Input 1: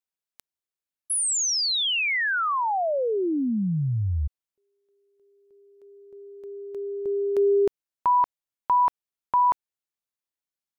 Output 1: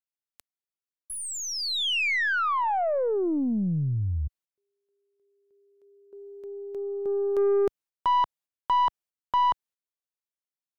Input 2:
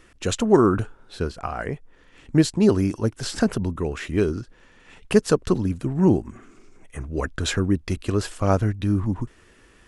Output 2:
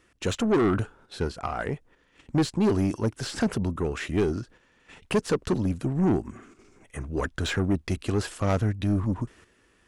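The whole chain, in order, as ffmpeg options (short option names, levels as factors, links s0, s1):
-filter_complex "[0:a]agate=range=0.398:threshold=0.00447:ratio=16:release=135:detection=rms,highpass=f=64:p=1,aeval=exprs='0.708*(cos(1*acos(clip(val(0)/0.708,-1,1)))-cos(1*PI/2))+0.0316*(cos(8*acos(clip(val(0)/0.708,-1,1)))-cos(8*PI/2))':c=same,asoftclip=type=tanh:threshold=0.141,acrossover=split=3600[s0][s1];[s1]acompressor=threshold=0.0178:ratio=4:attack=1:release=60[s2];[s0][s2]amix=inputs=2:normalize=0"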